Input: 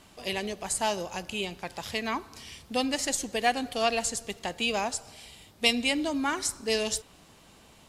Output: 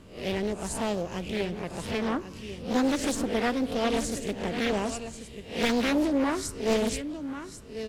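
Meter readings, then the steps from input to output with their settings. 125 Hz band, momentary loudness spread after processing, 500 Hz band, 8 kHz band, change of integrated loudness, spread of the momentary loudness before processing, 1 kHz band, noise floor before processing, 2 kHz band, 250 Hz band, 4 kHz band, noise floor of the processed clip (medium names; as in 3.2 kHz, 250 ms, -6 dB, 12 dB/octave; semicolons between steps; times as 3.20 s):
+8.0 dB, 12 LU, +3.0 dB, -5.0 dB, +0.5 dB, 10 LU, -2.0 dB, -56 dBFS, -2.5 dB, +6.0 dB, -5.0 dB, -44 dBFS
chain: reverse spectral sustain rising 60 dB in 0.41 s; peaking EQ 770 Hz -10 dB 0.61 oct; hard clipper -17 dBFS, distortion -19 dB; tilt shelf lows +7.5 dB, about 1.1 kHz; delay 1091 ms -11 dB; loudspeaker Doppler distortion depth 0.64 ms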